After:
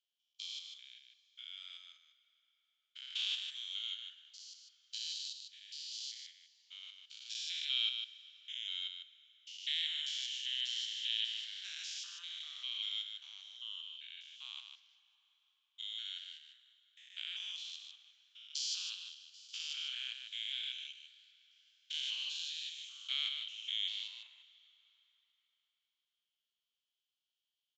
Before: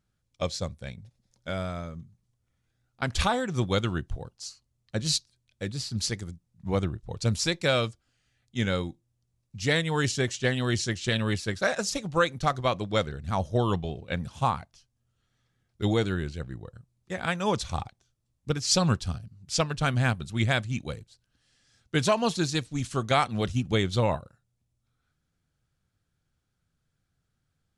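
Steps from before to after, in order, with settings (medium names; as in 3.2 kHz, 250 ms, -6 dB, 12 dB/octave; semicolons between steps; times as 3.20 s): spectrogram pixelated in time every 200 ms; ladder high-pass 2.9 kHz, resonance 80%; reverberation RT60 5.1 s, pre-delay 88 ms, DRR 16 dB; resampled via 16 kHz; delay 151 ms -6.5 dB; trim +2 dB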